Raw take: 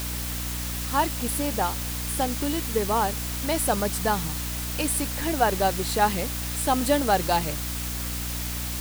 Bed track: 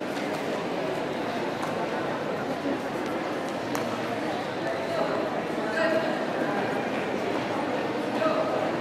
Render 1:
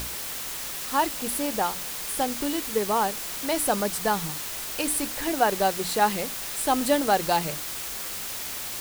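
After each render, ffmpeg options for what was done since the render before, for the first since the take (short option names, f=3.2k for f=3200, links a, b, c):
-af "bandreject=f=60:t=h:w=6,bandreject=f=120:t=h:w=6,bandreject=f=180:t=h:w=6,bandreject=f=240:t=h:w=6,bandreject=f=300:t=h:w=6"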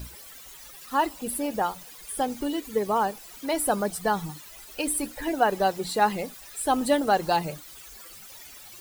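-af "afftdn=nr=16:nf=-34"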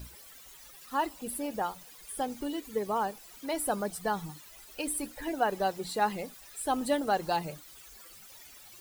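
-af "volume=-6dB"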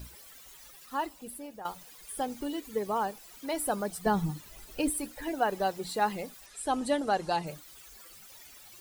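-filter_complex "[0:a]asettb=1/sr,asplit=3[a][b][c];[a]atrim=end=4.064[d];[b]atrim=start=4.06:end=4.9,asetpts=PTS-STARTPTS,afade=t=in:d=0.004:c=qsin,afade=t=out:st=0.836:d=0.004:c=qsin,lowshelf=f=420:g=12[e];[c]atrim=start=4.896[f];[d][e]acrossfade=d=0.004:c1=hsin:c2=qsin[g];[g][f]acrossfade=d=0.004:c1=qsin:c2=hsin,asettb=1/sr,asplit=3[h][i][j];[h]atrim=end=6.464[k];[i]atrim=start=6.46:end=7.47,asetpts=PTS-STARTPTS,afade=t=in:d=0.004:c=qsin,afade=t=out:st=1.006:d=0.004:c=qsin,lowpass=f=10k:w=0.5412,lowpass=f=10k:w=1.3066[l];[j]atrim=start=7.466[m];[k][l]acrossfade=d=0.004:c1=hsin:c2=qsin[n];[n][m]acrossfade=d=0.004:c1=qsin:c2=hsin,asplit=2[o][p];[o]atrim=end=1.65,asetpts=PTS-STARTPTS,afade=t=out:st=0.67:d=0.98:silence=0.223872[q];[p]atrim=start=1.65,asetpts=PTS-STARTPTS,afade=t=in:d=0.004:c=hsin:silence=0.223872[r];[q][r]concat=n=2:v=0:a=1"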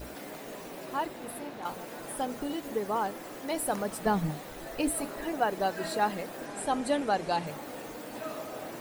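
-filter_complex "[1:a]volume=-13.5dB[a];[0:a][a]amix=inputs=2:normalize=0"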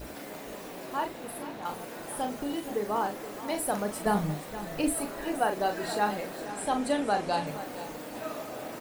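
-filter_complex "[0:a]asplit=2[a][b];[b]adelay=39,volume=-7dB[c];[a][c]amix=inputs=2:normalize=0,aecho=1:1:472:0.211"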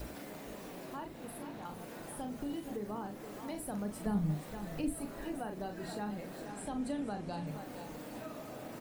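-filter_complex "[0:a]acrossover=split=250[a][b];[b]acompressor=threshold=-49dB:ratio=2.5[c];[a][c]amix=inputs=2:normalize=0"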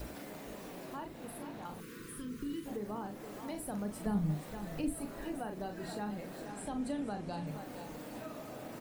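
-filter_complex "[0:a]asettb=1/sr,asplit=3[a][b][c];[a]atrim=end=1.804[d];[b]atrim=start=1.8:end=2.66,asetpts=PTS-STARTPTS,afade=t=in:d=0.004:c=qsin,afade=t=out:st=0.856:d=0.004:c=qsin,asuperstop=centerf=720:order=8:qfactor=1.2[e];[c]atrim=start=2.656[f];[d][e]acrossfade=d=0.004:c1=hsin:c2=qsin[g];[g][f]acrossfade=d=0.004:c1=qsin:c2=hsin"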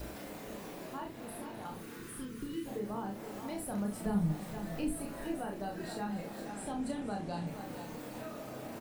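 -filter_complex "[0:a]asplit=2[a][b];[b]adelay=30,volume=-4dB[c];[a][c]amix=inputs=2:normalize=0,aecho=1:1:260|520|780|1040|1300:0.158|0.0824|0.0429|0.0223|0.0116"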